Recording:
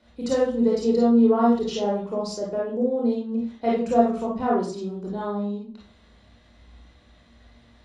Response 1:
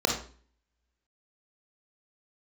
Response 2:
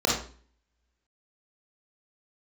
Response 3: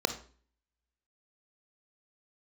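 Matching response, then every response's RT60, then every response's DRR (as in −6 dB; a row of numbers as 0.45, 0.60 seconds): 2; 0.45, 0.45, 0.45 seconds; 0.0, −4.5, 8.0 decibels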